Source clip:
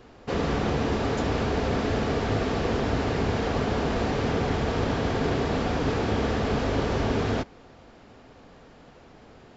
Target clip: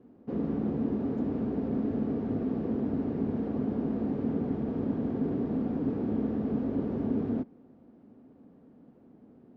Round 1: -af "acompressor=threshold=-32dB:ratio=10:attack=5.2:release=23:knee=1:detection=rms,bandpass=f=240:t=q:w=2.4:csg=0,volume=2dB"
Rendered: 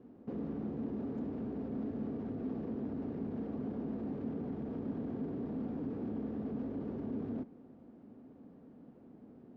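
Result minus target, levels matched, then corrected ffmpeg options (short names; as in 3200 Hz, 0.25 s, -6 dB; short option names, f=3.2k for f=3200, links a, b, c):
compressor: peak gain reduction +12.5 dB
-af "bandpass=f=240:t=q:w=2.4:csg=0,volume=2dB"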